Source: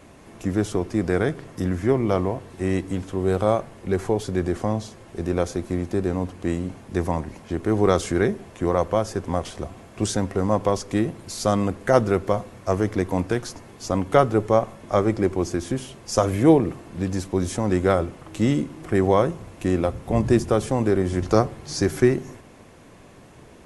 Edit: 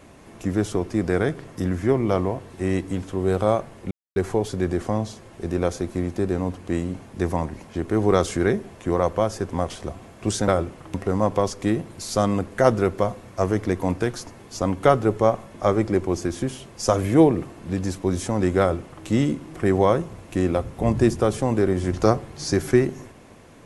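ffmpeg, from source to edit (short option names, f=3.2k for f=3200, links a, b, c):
-filter_complex "[0:a]asplit=4[a][b][c][d];[a]atrim=end=3.91,asetpts=PTS-STARTPTS,afade=t=out:st=3.906:d=0.004:c=hsin,apad=pad_dur=0.25[e];[b]atrim=start=3.91:end=10.232,asetpts=PTS-STARTPTS,afade=t=in:d=0.004:c=hsin[f];[c]atrim=start=17.888:end=18.352[g];[d]atrim=start=10.228[h];[e][f]concat=n=2:v=0:a=1[i];[i][g]acrossfade=d=0.004:c1=hsin:c2=hsin[j];[j][h]acrossfade=d=0.004:c1=hsin:c2=hsin"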